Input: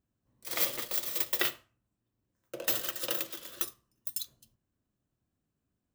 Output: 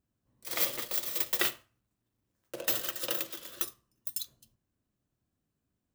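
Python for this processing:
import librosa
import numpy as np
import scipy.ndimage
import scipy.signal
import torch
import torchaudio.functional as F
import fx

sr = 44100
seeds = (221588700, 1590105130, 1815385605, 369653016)

y = fx.block_float(x, sr, bits=3, at=(1.24, 2.6), fade=0.02)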